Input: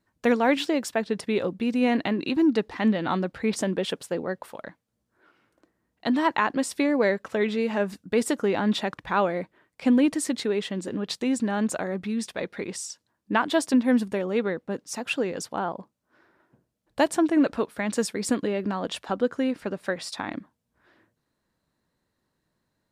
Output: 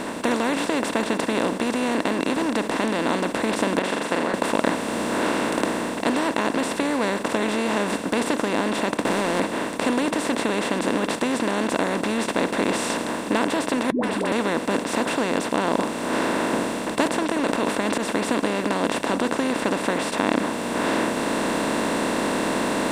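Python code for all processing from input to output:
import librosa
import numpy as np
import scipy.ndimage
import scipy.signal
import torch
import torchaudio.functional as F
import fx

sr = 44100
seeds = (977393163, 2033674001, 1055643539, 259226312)

y = fx.chain(x, sr, fx.level_steps(step_db=13),
    fx.bandpass_q(hz=1600.0, q=1.7),
    fx.room_flutter(wall_m=7.2, rt60_s=0.28), at=(3.79, 4.34))
y = fx.chain(y, sr, fx.median_filter(points=41),
    fx.band_squash(depth_pct=100), at=(8.99, 9.4))
y = fx.chain(y, sr, fx.moving_average(points=7),
    fx.dispersion(late='highs', ms=137.0, hz=420.0), at=(13.9, 14.32))
y = fx.chain(y, sr, fx.auto_swell(attack_ms=187.0),
    fx.sustainer(db_per_s=130.0), at=(17.29, 18.09))
y = fx.bin_compress(y, sr, power=0.2)
y = fx.rider(y, sr, range_db=10, speed_s=0.5)
y = F.gain(torch.from_numpy(y), -8.0).numpy()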